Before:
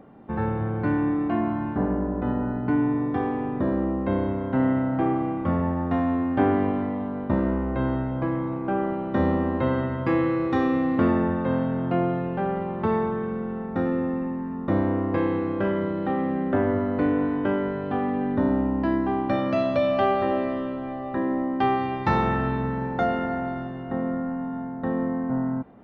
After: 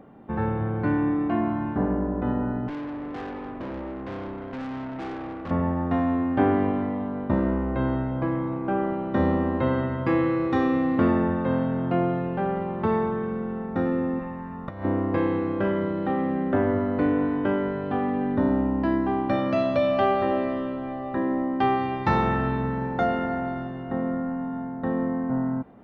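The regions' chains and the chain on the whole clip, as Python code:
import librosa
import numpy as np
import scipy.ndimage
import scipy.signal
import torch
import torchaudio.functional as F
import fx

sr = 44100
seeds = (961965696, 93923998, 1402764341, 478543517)

y = fx.chain(x, sr, fx.peak_eq(hz=130.0, db=-6.5, octaves=1.3),
    fx.tube_stage(drive_db=31.0, bias=0.75), at=(2.68, 5.51))
y = fx.chain(y, sr, fx.peak_eq(hz=300.0, db=-14.0, octaves=0.95),
    fx.over_compress(threshold_db=-31.0, ratio=-0.5), at=(14.19, 14.85))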